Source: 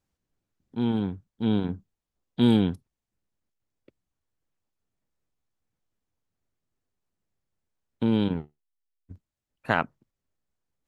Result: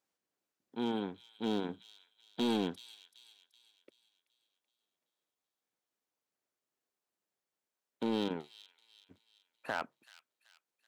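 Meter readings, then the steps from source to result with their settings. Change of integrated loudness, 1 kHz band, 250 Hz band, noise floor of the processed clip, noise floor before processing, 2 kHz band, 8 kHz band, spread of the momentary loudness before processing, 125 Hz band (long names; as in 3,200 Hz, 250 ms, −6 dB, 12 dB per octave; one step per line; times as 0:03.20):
−10.5 dB, −7.5 dB, −11.5 dB, below −85 dBFS, below −85 dBFS, −10.0 dB, can't be measured, 18 LU, −18.5 dB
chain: high-pass filter 370 Hz 12 dB per octave
brickwall limiter −18 dBFS, peak gain reduction 9.5 dB
hard clipping −24.5 dBFS, distortion −14 dB
on a send: delay with a high-pass on its return 381 ms, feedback 46%, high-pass 3,600 Hz, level −8.5 dB
on the sum: level −1.5 dB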